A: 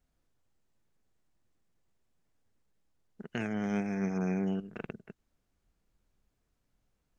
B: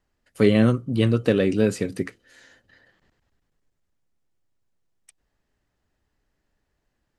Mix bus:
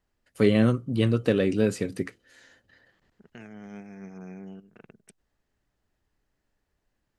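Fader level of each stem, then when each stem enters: −10.5, −3.0 decibels; 0.00, 0.00 seconds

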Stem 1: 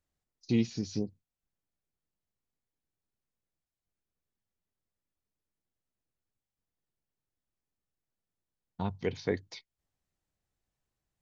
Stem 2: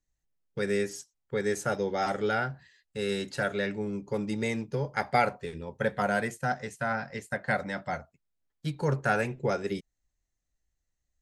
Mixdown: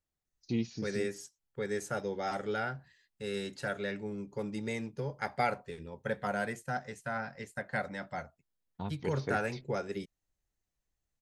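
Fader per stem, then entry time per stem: −5.0, −6.0 decibels; 0.00, 0.25 seconds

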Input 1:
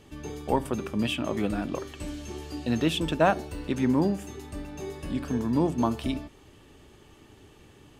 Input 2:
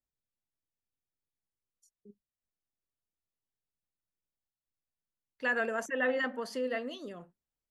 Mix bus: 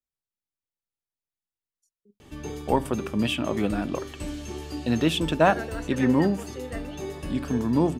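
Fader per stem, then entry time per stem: +2.5, −4.5 decibels; 2.20, 0.00 seconds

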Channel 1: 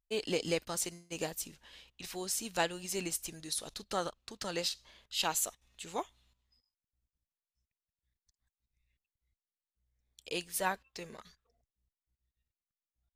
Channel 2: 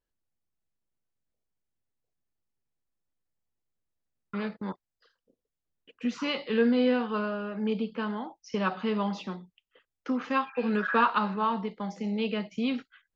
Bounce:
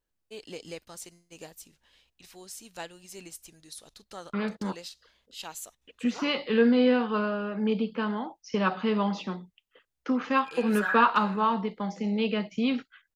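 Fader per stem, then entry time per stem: −8.0, +2.5 decibels; 0.20, 0.00 seconds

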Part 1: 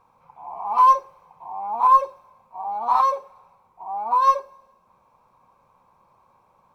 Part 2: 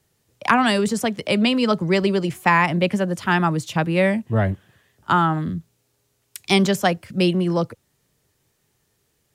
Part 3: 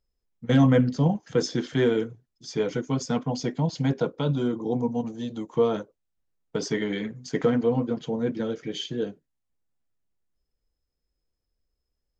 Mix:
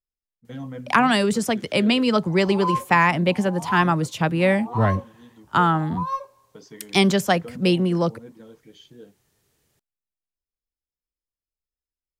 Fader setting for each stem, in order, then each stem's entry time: −10.5, −0.5, −16.5 decibels; 1.85, 0.45, 0.00 seconds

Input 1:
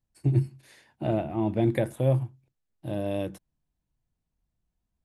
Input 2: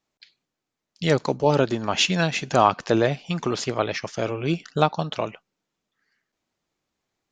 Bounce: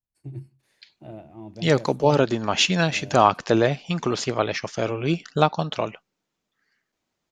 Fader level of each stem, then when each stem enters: −13.5, +1.0 decibels; 0.00, 0.60 seconds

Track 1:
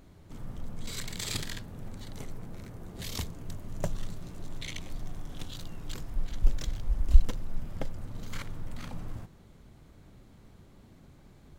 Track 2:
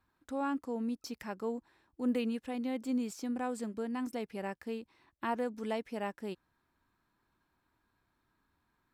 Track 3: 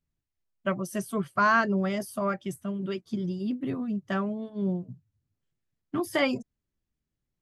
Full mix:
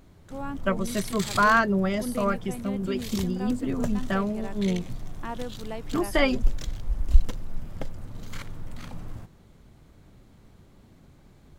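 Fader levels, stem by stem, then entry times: +1.0, −1.5, +2.5 decibels; 0.00, 0.00, 0.00 seconds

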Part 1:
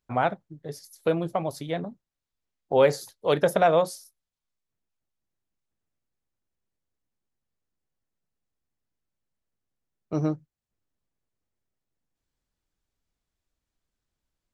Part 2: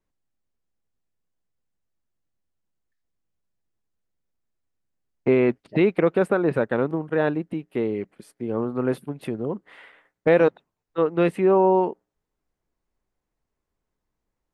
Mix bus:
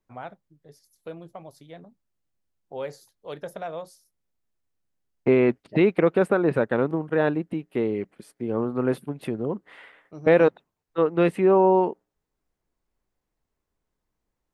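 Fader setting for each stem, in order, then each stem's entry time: −14.0, 0.0 decibels; 0.00, 0.00 seconds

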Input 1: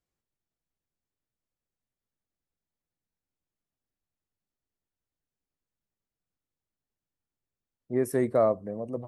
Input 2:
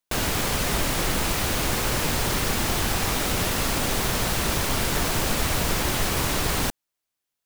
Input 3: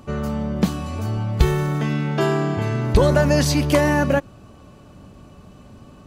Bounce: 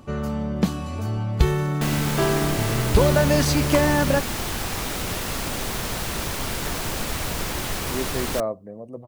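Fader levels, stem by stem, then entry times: −3.0, −3.5, −2.0 decibels; 0.00, 1.70, 0.00 seconds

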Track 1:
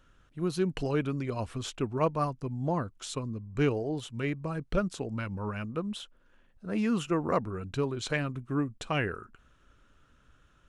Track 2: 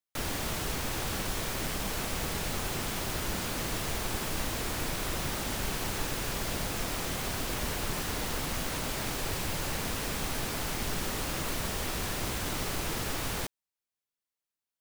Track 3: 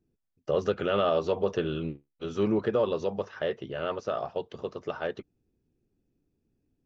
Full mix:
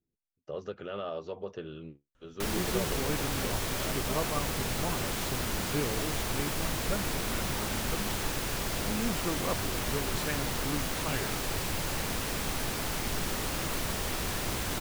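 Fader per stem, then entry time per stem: −6.0, +0.5, −11.5 decibels; 2.15, 2.25, 0.00 seconds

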